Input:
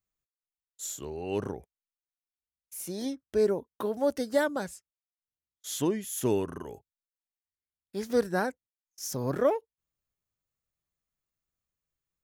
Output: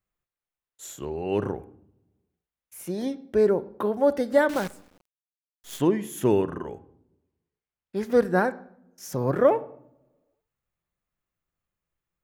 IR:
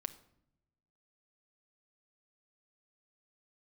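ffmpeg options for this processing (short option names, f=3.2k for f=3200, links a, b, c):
-filter_complex "[0:a]asplit=2[a][b];[1:a]atrim=start_sample=2205,lowpass=2.9k,lowshelf=f=480:g=-2.5[c];[b][c]afir=irnorm=-1:irlink=0,volume=7.5dB[d];[a][d]amix=inputs=2:normalize=0,asettb=1/sr,asplit=3[e][f][g];[e]atrim=end=4.494[h];[f]atrim=start=4.49:end=5.8,asetpts=PTS-STARTPTS,afade=t=in:d=0.004:c=qsin,afade=t=out:st=1.306:d=0.004:c=qsin,acrusher=bits=6:dc=4:mix=0:aa=0.000001[i];[g]atrim=start=5.796[j];[h][i]acrossfade=d=0.004:c1=hsin:c2=qsin[k];[k][j]acrossfade=d=0.004:c1=qsin:c2=hsin,asettb=1/sr,asplit=3[l][m][n];[l]atrim=end=6.424[o];[m]atrim=start=6.42:end=7.96,asetpts=PTS-STARTPTS,afade=t=in:d=0.004:c=qsin,afade=t=out:st=1.536:d=0.004:c=qsin,lowpass=7.6k[p];[n]atrim=start=7.956[q];[o][p]acrossfade=d=0.004:c1=hsin:c2=qsin[r];[r][q]acrossfade=d=0.004:c1=qsin:c2=hsin,volume=-2.5dB"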